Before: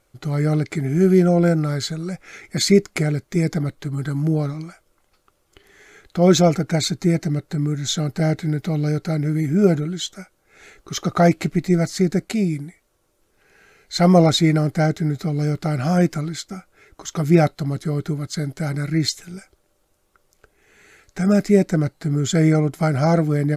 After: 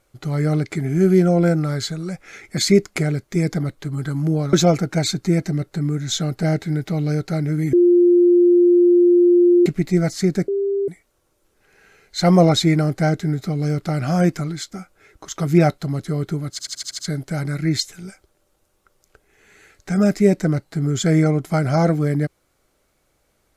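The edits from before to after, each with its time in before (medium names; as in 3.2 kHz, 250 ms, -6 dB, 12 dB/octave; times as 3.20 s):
4.53–6.30 s: delete
9.50–11.43 s: bleep 351 Hz -9.5 dBFS
12.25–12.65 s: bleep 397 Hz -17.5 dBFS
18.28 s: stutter 0.08 s, 7 plays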